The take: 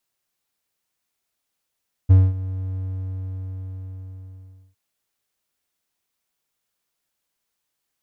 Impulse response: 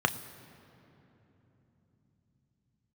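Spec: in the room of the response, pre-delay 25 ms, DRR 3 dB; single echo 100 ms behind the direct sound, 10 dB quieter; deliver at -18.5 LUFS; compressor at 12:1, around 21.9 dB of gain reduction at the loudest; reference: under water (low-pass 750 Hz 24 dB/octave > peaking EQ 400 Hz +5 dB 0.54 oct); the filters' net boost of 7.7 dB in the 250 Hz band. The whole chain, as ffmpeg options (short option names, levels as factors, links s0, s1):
-filter_complex "[0:a]equalizer=f=250:t=o:g=7.5,acompressor=threshold=0.0282:ratio=12,aecho=1:1:100:0.316,asplit=2[s0][s1];[1:a]atrim=start_sample=2205,adelay=25[s2];[s1][s2]afir=irnorm=-1:irlink=0,volume=0.2[s3];[s0][s3]amix=inputs=2:normalize=0,lowpass=f=750:w=0.5412,lowpass=f=750:w=1.3066,equalizer=f=400:t=o:w=0.54:g=5,volume=9.44"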